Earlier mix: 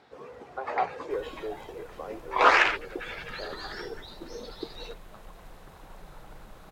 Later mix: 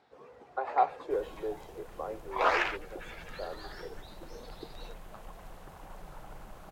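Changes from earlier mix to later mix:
first sound −9.0 dB
master: add parametric band 770 Hz +3 dB 0.77 octaves

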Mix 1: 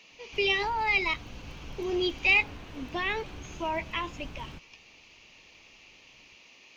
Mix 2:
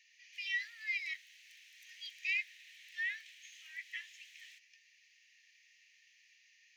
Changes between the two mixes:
speech: add high shelf with overshoot 2,000 Hz −7.5 dB, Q 3
master: add Chebyshev high-pass with heavy ripple 1,800 Hz, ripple 3 dB

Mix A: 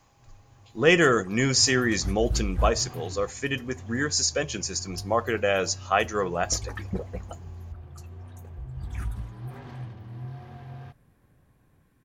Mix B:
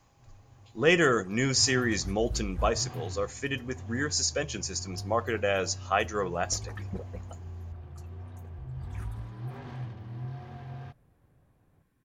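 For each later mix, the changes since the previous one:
speech −3.5 dB
second sound −7.0 dB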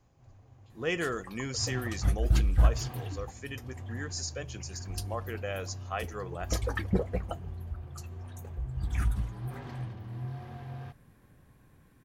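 speech −9.0 dB
second sound +11.0 dB

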